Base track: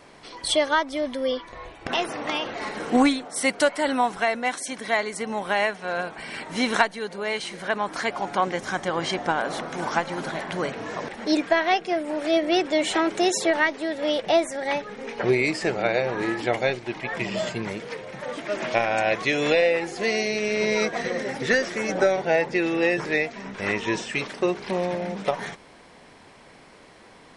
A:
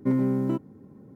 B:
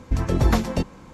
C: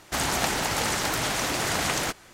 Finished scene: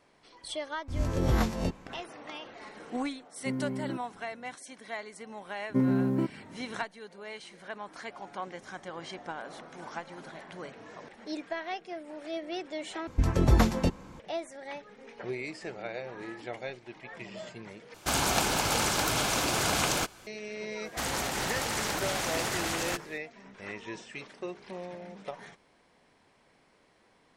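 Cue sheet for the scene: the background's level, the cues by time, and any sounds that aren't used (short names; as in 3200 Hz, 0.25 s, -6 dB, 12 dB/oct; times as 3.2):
base track -15 dB
0.88 add B -9 dB + spectral swells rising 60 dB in 0.51 s
3.4 add A -10 dB
5.69 add A -2 dB
13.07 replace with B -3 dB
17.94 replace with C -1 dB + notch 1900 Hz, Q 6.7
20.85 add C -4 dB + limiter -17.5 dBFS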